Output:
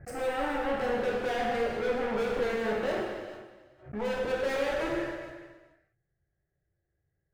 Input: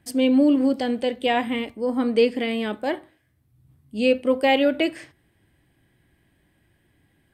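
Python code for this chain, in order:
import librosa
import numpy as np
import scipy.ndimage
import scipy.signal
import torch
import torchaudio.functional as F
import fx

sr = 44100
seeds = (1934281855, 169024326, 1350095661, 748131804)

y = fx.wiener(x, sr, points=15)
y = fx.leveller(y, sr, passes=5)
y = fx.high_shelf(y, sr, hz=3400.0, db=-8.5)
y = fx.fixed_phaser(y, sr, hz=970.0, stages=6)
y = 10.0 ** (-23.5 / 20.0) * np.tanh(y / 10.0 ** (-23.5 / 20.0))
y = fx.bass_treble(y, sr, bass_db=2, treble_db=-6)
y = y + 10.0 ** (-16.5 / 20.0) * np.pad(y, (int(422 * sr / 1000.0), 0))[:len(y)]
y = fx.rev_gated(y, sr, seeds[0], gate_ms=500, shape='falling', drr_db=-4.0)
y = fx.pre_swell(y, sr, db_per_s=150.0)
y = y * 10.0 ** (-9.0 / 20.0)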